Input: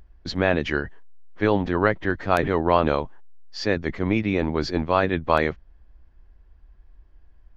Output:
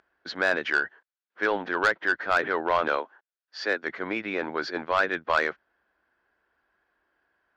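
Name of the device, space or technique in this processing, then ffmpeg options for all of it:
intercom: -filter_complex "[0:a]asettb=1/sr,asplit=3[a][b][c];[a]atrim=end=2.884[d];[b]atrim=start=2.88:end=3.83,asetpts=PTS-STARTPTS,afade=t=in:d=0.004:c=qsin,afade=t=out:st=0.946:d=0.004:c=qsin,highpass=f=240:w=0.5412,highpass=f=240:w=1.3066[e];[c]atrim=start=3.826[f];[d][e]acrossfade=d=0.004:c1=hsin:c2=qsin[g];[g][f]acrossfade=d=0.004:c1=qsin:c2=hsin,highpass=430,lowpass=4.9k,equalizer=f=1.5k:t=o:w=0.43:g=11,asoftclip=type=tanh:threshold=-11.5dB,volume=-2dB"

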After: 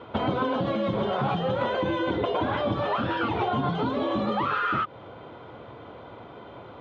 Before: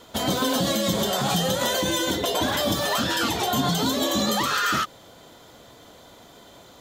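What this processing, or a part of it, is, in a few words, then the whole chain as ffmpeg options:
bass amplifier: -af "acompressor=threshold=-28dB:ratio=6,highpass=82,equalizer=f=110:t=q:w=4:g=4,equalizer=f=180:t=q:w=4:g=-5,equalizer=f=260:t=q:w=4:g=-4,equalizer=f=660:t=q:w=4:g=-4,equalizer=f=1.8k:t=q:w=4:g=-10,lowpass=f=2.3k:w=0.5412,lowpass=f=2.3k:w=1.3066,volume=8dB"

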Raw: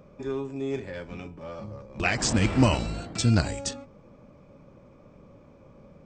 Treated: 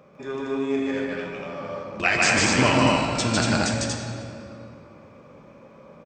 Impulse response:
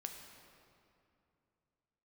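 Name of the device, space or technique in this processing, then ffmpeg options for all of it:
stadium PA: -filter_complex "[0:a]highpass=f=230:p=1,equalizer=f=1.7k:t=o:w=2.2:g=5,aecho=1:1:151.6|236.2:0.891|0.794[a];[1:a]atrim=start_sample=2205[b];[a][b]afir=irnorm=-1:irlink=0,volume=4.5dB"

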